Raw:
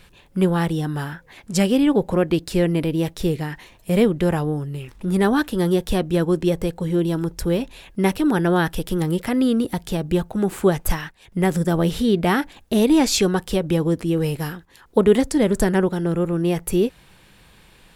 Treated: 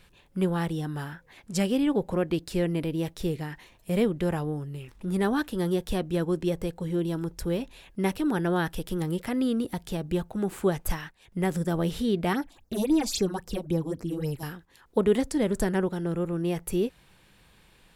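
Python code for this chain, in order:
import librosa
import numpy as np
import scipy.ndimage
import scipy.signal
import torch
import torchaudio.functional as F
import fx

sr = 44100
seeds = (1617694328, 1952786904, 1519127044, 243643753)

y = fx.phaser_stages(x, sr, stages=6, low_hz=110.0, high_hz=3300.0, hz=3.7, feedback_pct=25, at=(12.33, 14.43))
y = y * 10.0 ** (-7.5 / 20.0)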